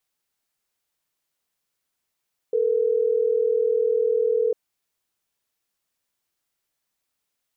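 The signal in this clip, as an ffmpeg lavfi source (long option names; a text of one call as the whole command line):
ffmpeg -f lavfi -i "aevalsrc='0.0891*(sin(2*PI*440*t)+sin(2*PI*480*t))*clip(min(mod(t,6),2-mod(t,6))/0.005,0,1)':duration=3.12:sample_rate=44100" out.wav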